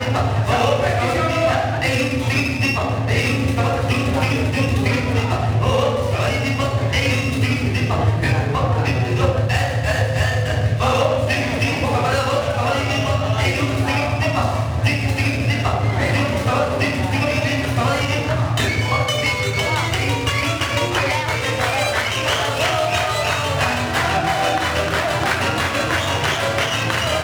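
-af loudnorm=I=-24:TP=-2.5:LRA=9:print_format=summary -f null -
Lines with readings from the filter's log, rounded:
Input Integrated:    -18.8 LUFS
Input True Peak:      -2.9 dBTP
Input LRA:             0.3 LU
Input Threshold:     -28.8 LUFS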